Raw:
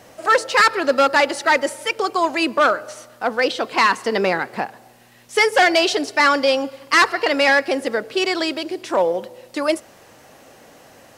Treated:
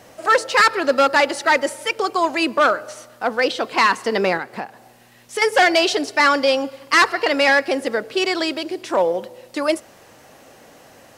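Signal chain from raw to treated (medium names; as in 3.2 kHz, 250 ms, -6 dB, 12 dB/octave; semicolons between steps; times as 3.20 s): 4.37–5.42 s: compression 2:1, threshold -28 dBFS, peak gain reduction 9 dB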